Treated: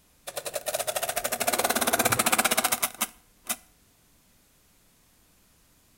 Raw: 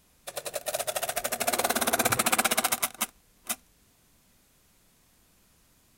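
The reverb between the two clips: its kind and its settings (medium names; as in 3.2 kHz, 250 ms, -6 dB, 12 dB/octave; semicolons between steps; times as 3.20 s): FDN reverb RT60 0.59 s, high-frequency decay 0.8×, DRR 17 dB; trim +1.5 dB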